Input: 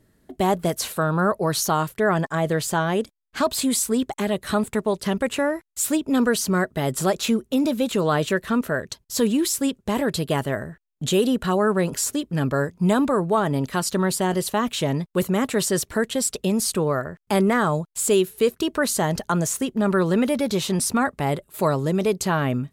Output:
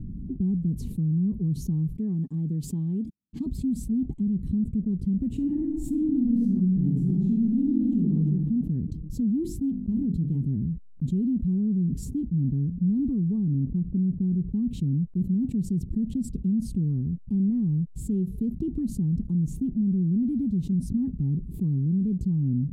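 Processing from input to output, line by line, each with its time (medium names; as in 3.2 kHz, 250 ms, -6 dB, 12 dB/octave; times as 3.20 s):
1.96–3.46 s: high-pass 520 Hz 6 dB/octave
5.29–8.20 s: reverb throw, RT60 0.97 s, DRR -6.5 dB
9.43–10.48 s: hum notches 50/100/150/200/250/300/350/400/450 Hz
13.54–14.53 s: low-pass 1.1 kHz 24 dB/octave
whole clip: inverse Chebyshev low-pass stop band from 550 Hz, stop band 50 dB; peaking EQ 110 Hz -7 dB 0.81 oct; level flattener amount 70%; trim -2.5 dB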